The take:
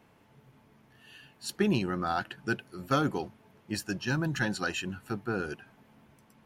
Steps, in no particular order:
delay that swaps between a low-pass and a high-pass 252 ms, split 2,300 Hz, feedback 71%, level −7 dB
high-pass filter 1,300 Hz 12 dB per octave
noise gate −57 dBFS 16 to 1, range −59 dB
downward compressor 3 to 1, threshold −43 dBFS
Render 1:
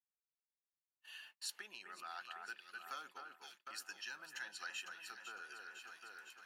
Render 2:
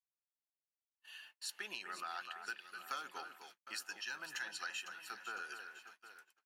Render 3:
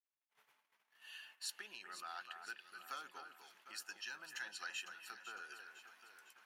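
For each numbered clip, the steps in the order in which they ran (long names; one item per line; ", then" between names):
delay that swaps between a low-pass and a high-pass, then downward compressor, then high-pass filter, then noise gate
high-pass filter, then downward compressor, then delay that swaps between a low-pass and a high-pass, then noise gate
downward compressor, then delay that swaps between a low-pass and a high-pass, then noise gate, then high-pass filter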